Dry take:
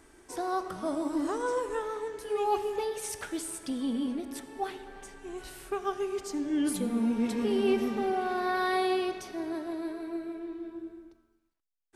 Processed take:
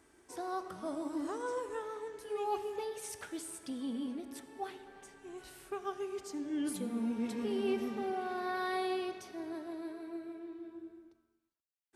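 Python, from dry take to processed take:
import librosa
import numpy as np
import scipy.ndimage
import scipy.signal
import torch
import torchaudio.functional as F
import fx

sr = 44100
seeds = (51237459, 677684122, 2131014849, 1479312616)

y = scipy.signal.sosfilt(scipy.signal.butter(2, 62.0, 'highpass', fs=sr, output='sos'), x)
y = y * 10.0 ** (-7.0 / 20.0)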